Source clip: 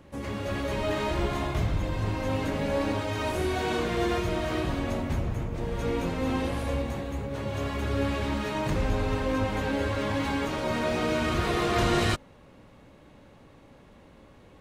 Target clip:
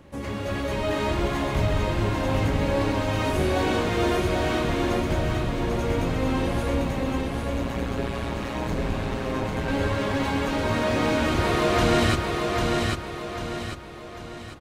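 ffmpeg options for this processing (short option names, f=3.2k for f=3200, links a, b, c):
-filter_complex "[0:a]asettb=1/sr,asplit=3[a][b][c];[a]atrim=end=7.214[d];[b]atrim=start=7.21:end=9.68,asetpts=PTS-STARTPTS,afade=t=in:d=0.004:c=qsin,afade=t=out:st=2.466:d=0.004:c=qsin,tremolo=f=120:d=1[e];[c]atrim=start=9.676[f];[d][e]acrossfade=d=0.004:c1=hsin:c2=qsin[g];[g][f]acrossfade=d=0.004:c1=qsin:c2=hsin,aecho=1:1:796|1592|2388|3184|3980|4776:0.708|0.304|0.131|0.0563|0.0242|0.0104,volume=2.5dB"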